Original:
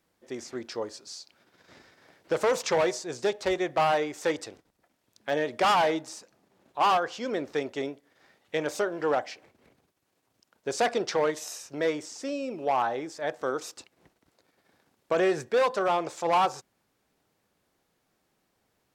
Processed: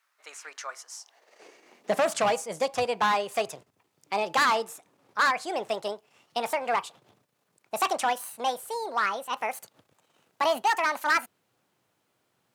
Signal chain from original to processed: speed glide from 117% -> 185%; high-pass sweep 1300 Hz -> 110 Hz, 0.73–2.32

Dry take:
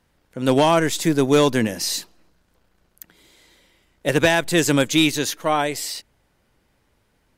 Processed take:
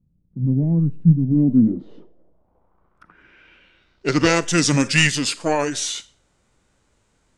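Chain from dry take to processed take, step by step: Schroeder reverb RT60 0.39 s, combs from 32 ms, DRR 17 dB; formant shift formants -5 st; low-pass sweep 170 Hz -> 7800 Hz, 1.24–4.48

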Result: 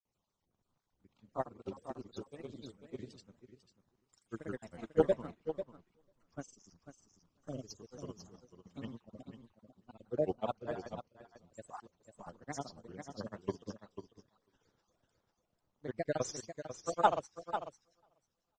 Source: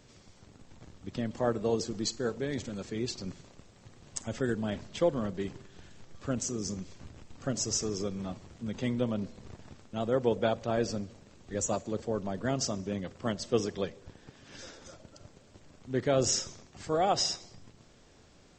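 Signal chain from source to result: random spectral dropouts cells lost 39%; bell 1000 Hz +7.5 dB 0.8 oct; grains, pitch spread up and down by 3 st; on a send: feedback echo 0.495 s, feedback 17%, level -4 dB; on the sum: upward expander 2.5:1, over -40 dBFS; gain +1 dB

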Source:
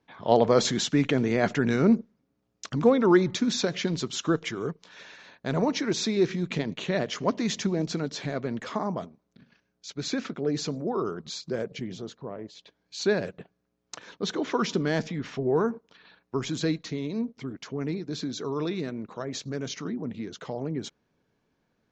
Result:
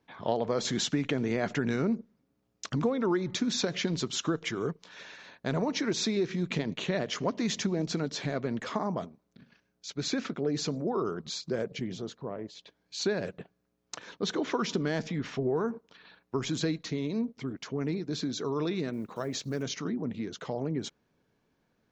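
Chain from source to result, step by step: 18.93–19.64 block floating point 7-bit; compressor 6:1, threshold -25 dBFS, peak gain reduction 11 dB

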